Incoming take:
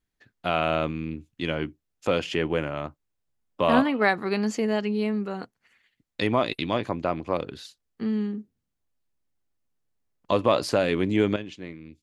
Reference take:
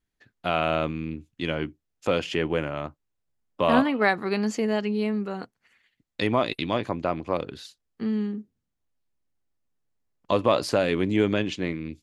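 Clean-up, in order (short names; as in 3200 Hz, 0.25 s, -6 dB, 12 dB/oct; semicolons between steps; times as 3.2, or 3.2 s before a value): gain 0 dB, from 11.36 s +10 dB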